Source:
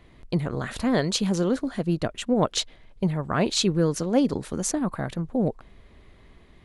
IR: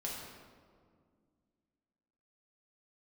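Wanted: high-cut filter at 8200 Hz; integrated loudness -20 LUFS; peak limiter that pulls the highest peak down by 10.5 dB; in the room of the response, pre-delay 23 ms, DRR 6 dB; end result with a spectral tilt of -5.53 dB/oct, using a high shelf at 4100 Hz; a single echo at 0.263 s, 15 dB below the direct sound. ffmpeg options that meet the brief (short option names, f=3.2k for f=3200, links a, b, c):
-filter_complex "[0:a]lowpass=8.2k,highshelf=f=4.1k:g=-3.5,alimiter=limit=-19.5dB:level=0:latency=1,aecho=1:1:263:0.178,asplit=2[a][b];[1:a]atrim=start_sample=2205,adelay=23[c];[b][c]afir=irnorm=-1:irlink=0,volume=-7dB[d];[a][d]amix=inputs=2:normalize=0,volume=8.5dB"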